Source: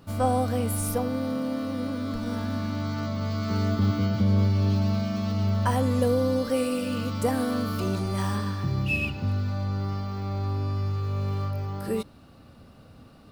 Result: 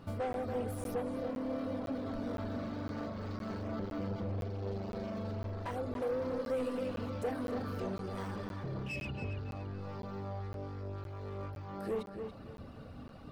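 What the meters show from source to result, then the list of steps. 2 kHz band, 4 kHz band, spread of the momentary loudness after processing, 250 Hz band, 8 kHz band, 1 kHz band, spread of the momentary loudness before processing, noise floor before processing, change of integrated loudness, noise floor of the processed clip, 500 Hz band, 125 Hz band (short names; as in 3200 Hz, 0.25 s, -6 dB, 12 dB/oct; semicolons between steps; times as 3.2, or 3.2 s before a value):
-12.0 dB, -15.0 dB, 7 LU, -12.0 dB, under -15 dB, -11.0 dB, 7 LU, -51 dBFS, -12.0 dB, -48 dBFS, -7.5 dB, -15.0 dB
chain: in parallel at -1 dB: vocal rider 0.5 s; on the sum: de-hum 52.59 Hz, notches 9; overloaded stage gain 22.5 dB; high shelf 4500 Hz -11.5 dB; compressor 4:1, threshold -34 dBFS, peak gain reduction 8.5 dB; reverb removal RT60 0.79 s; on a send: darkening echo 0.282 s, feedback 37%, low-pass 3900 Hz, level -6.5 dB; on the sum: dynamic EQ 490 Hz, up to +6 dB, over -50 dBFS, Q 1.6; crackling interface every 0.51 s, samples 512, zero, from 0.33; gain -4 dB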